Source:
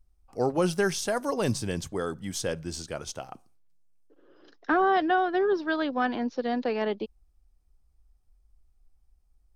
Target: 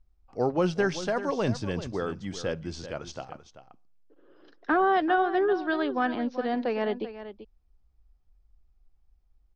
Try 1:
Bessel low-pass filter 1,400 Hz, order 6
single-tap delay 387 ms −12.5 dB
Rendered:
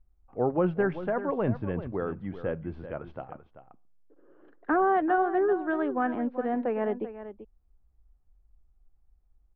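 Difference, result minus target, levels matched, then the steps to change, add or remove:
4,000 Hz band −18.0 dB
change: Bessel low-pass filter 4,100 Hz, order 6

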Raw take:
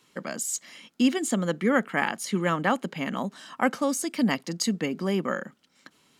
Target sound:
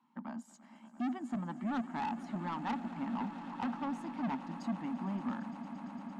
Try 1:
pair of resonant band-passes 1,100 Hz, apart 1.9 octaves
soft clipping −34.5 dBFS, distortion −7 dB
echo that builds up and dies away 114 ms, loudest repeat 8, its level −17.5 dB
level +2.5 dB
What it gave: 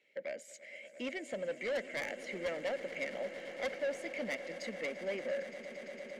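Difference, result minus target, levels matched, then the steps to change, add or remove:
500 Hz band +14.5 dB
change: pair of resonant band-passes 460 Hz, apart 1.9 octaves

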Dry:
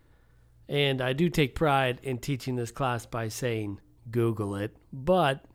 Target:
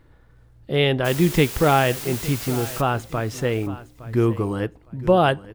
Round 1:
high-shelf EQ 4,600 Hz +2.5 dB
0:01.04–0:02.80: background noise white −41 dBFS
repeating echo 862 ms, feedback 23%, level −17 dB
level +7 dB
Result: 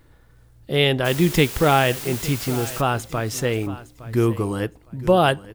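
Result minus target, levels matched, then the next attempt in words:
4,000 Hz band +3.0 dB
high-shelf EQ 4,600 Hz −8.5 dB
0:01.04–0:02.80: background noise white −41 dBFS
repeating echo 862 ms, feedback 23%, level −17 dB
level +7 dB

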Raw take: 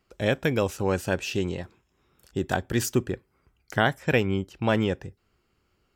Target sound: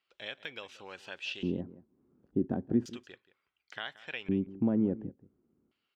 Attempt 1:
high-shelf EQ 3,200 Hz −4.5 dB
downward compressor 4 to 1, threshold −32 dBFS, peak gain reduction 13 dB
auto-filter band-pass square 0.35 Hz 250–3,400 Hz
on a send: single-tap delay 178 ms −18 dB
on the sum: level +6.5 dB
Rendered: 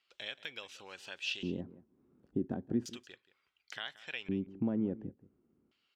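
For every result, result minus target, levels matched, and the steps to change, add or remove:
8,000 Hz band +9.0 dB; downward compressor: peak gain reduction +5.5 dB
change: high-shelf EQ 3,200 Hz −15.5 dB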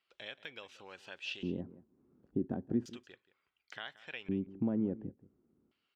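downward compressor: peak gain reduction +5 dB
change: downward compressor 4 to 1, threshold −25.5 dBFS, peak gain reduction 7.5 dB

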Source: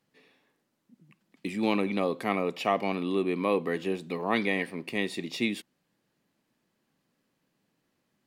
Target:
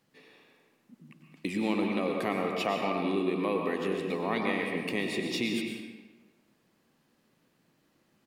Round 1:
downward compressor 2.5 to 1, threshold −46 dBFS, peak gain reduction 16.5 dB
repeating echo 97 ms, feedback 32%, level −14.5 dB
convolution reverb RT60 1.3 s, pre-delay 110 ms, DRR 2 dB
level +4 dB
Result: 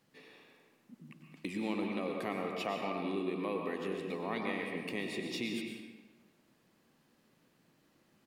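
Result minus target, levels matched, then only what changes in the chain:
downward compressor: peak gain reduction +6.5 dB
change: downward compressor 2.5 to 1, threshold −35 dBFS, peak gain reduction 10 dB

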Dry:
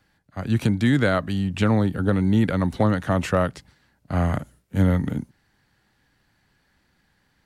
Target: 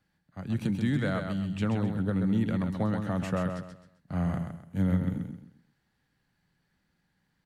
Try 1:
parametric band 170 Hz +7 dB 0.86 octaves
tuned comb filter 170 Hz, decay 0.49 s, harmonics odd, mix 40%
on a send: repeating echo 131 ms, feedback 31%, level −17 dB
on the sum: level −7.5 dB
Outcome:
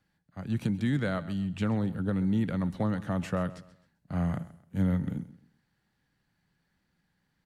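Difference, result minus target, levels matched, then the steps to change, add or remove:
echo-to-direct −11 dB
change: repeating echo 131 ms, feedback 31%, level −6 dB

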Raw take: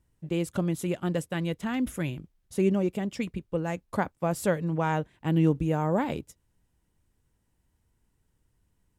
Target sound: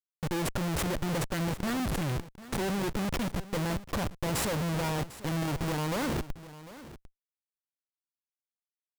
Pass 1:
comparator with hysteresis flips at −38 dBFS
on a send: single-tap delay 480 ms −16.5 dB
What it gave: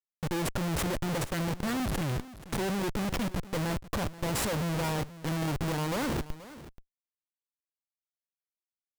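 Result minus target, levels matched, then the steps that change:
echo 269 ms early
change: single-tap delay 749 ms −16.5 dB

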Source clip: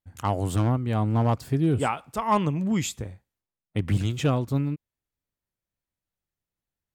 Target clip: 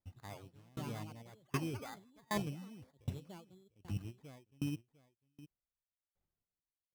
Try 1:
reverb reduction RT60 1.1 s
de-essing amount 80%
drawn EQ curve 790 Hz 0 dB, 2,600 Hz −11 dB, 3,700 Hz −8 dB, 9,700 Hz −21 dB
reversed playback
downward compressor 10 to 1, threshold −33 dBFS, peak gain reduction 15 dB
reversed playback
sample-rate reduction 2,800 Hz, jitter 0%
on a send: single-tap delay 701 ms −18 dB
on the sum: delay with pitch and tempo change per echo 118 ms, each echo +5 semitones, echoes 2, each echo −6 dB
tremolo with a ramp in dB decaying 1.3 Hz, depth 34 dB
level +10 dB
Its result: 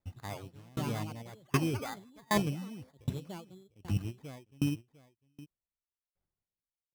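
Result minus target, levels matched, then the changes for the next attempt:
downward compressor: peak gain reduction −8 dB
change: downward compressor 10 to 1, threshold −42 dBFS, peak gain reduction 23 dB

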